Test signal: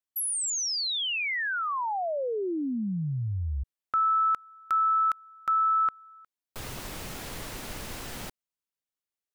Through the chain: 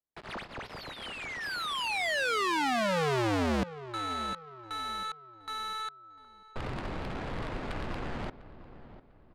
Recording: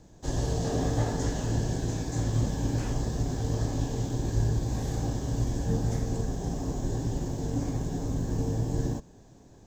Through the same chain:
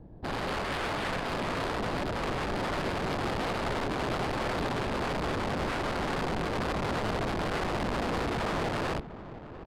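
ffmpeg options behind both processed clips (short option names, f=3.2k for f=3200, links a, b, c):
-filter_complex "[0:a]aeval=exprs='(mod(29.9*val(0)+1,2)-1)/29.9':c=same,aresample=11025,aresample=44100,asplit=2[a][b];[b]aecho=0:1:699|1398|2097|2796:0.211|0.0782|0.0289|0.0107[c];[a][c]amix=inputs=2:normalize=0,adynamicsmooth=sensitivity=6.5:basefreq=970,volume=5dB"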